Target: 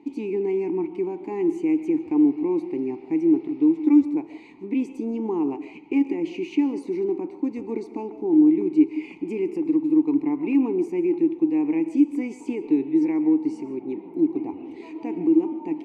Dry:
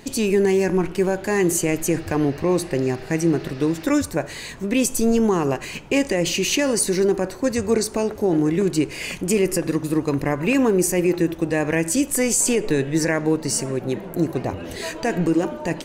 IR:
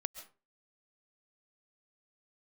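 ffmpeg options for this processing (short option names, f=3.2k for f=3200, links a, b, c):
-filter_complex "[0:a]asplit=3[a][b][c];[a]bandpass=f=300:t=q:w=8,volume=0dB[d];[b]bandpass=f=870:t=q:w=8,volume=-6dB[e];[c]bandpass=f=2.24k:t=q:w=8,volume=-9dB[f];[d][e][f]amix=inputs=3:normalize=0,asplit=2[g][h];[h]equalizer=f=430:w=0.74:g=13.5[i];[1:a]atrim=start_sample=2205,highshelf=f=8.3k:g=-9.5[j];[i][j]afir=irnorm=-1:irlink=0,volume=1.5dB[k];[g][k]amix=inputs=2:normalize=0,volume=-6.5dB"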